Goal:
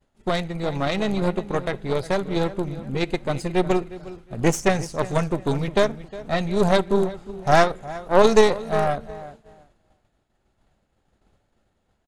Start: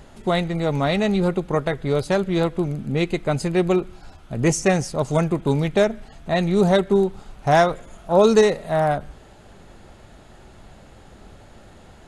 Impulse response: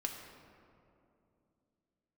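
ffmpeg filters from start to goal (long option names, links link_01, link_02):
-filter_complex "[0:a]asplit=2[link_01][link_02];[link_02]adelay=359,lowpass=frequency=4300:poles=1,volume=-13dB,asplit=2[link_03][link_04];[link_04]adelay=359,lowpass=frequency=4300:poles=1,volume=0.35,asplit=2[link_05][link_06];[link_06]adelay=359,lowpass=frequency=4300:poles=1,volume=0.35[link_07];[link_01][link_03][link_05][link_07]amix=inputs=4:normalize=0,agate=range=-33dB:threshold=-33dB:ratio=3:detection=peak,acontrast=73,aeval=exprs='0.841*(cos(1*acos(clip(val(0)/0.841,-1,1)))-cos(1*PI/2))+0.237*(cos(2*acos(clip(val(0)/0.841,-1,1)))-cos(2*PI/2))+0.188*(cos(3*acos(clip(val(0)/0.841,-1,1)))-cos(3*PI/2))':channel_layout=same,asplit=2[link_08][link_09];[1:a]atrim=start_sample=2205,atrim=end_sample=3969[link_10];[link_09][link_10]afir=irnorm=-1:irlink=0,volume=-16dB[link_11];[link_08][link_11]amix=inputs=2:normalize=0,volume=-3.5dB"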